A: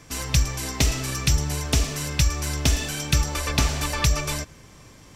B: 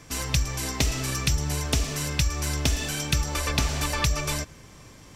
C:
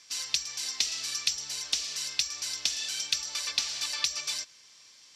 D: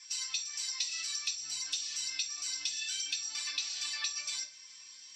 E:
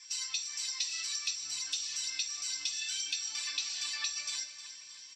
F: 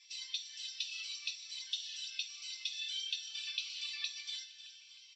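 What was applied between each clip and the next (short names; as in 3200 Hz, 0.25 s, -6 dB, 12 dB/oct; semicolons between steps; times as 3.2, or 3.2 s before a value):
compressor 2.5:1, threshold -21 dBFS, peak gain reduction 5 dB
band-pass 4600 Hz, Q 2; gain +4 dB
spectral contrast raised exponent 1.6; compressor 2:1, threshold -41 dBFS, peak gain reduction 10.5 dB; reverb RT60 0.45 s, pre-delay 3 ms, DRR -3 dB
feedback echo 0.31 s, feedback 50%, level -12.5 dB
band-pass 3200 Hz, Q 3.3; air absorption 73 m; cascading phaser falling 0.77 Hz; gain +5 dB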